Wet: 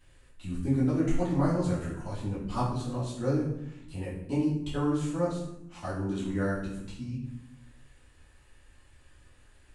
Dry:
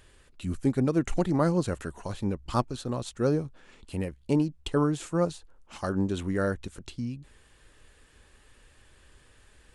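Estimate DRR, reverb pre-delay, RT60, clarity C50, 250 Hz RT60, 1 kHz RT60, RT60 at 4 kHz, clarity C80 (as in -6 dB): -10.0 dB, 3 ms, 0.75 s, 3.0 dB, 1.3 s, 0.75 s, 0.55 s, 6.5 dB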